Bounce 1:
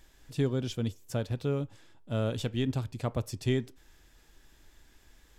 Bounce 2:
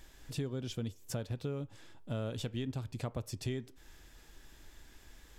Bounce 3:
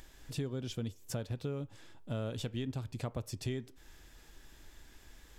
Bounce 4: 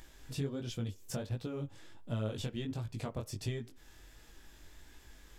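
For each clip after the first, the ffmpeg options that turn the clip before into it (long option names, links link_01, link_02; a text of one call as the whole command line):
ffmpeg -i in.wav -af "acompressor=threshold=-39dB:ratio=4,volume=3dB" out.wav
ffmpeg -i in.wav -af "acompressor=mode=upward:threshold=-54dB:ratio=2.5" out.wav
ffmpeg -i in.wav -af "flanger=delay=17:depth=5.9:speed=1.4,volume=3dB" out.wav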